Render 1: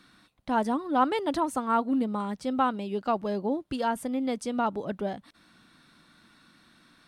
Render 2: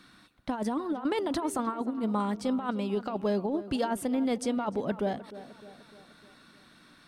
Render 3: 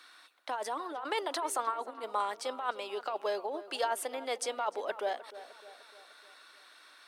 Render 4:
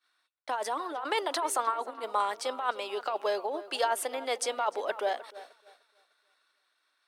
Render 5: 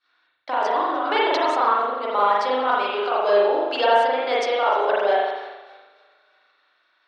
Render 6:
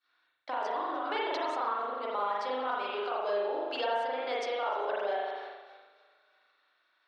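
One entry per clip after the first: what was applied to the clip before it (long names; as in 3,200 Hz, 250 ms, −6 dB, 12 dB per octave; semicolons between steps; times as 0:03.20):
compressor whose output falls as the input rises −28 dBFS, ratio −0.5; tape delay 303 ms, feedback 57%, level −13.5 dB, low-pass 1,900 Hz
Bessel high-pass filter 680 Hz, order 6; level +2.5 dB
downward expander −43 dBFS; low-shelf EQ 130 Hz −10.5 dB; level +4 dB
low-pass filter 5,100 Hz 24 dB per octave; convolution reverb RT60 1.0 s, pre-delay 39 ms, DRR −6 dB; level +4 dB
downward compressor 2 to 1, threshold −25 dBFS, peak gain reduction 7.5 dB; level −7.5 dB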